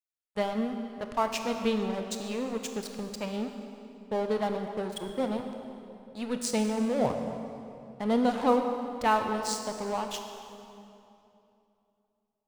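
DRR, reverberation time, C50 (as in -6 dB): 5.0 dB, 2.9 s, 5.5 dB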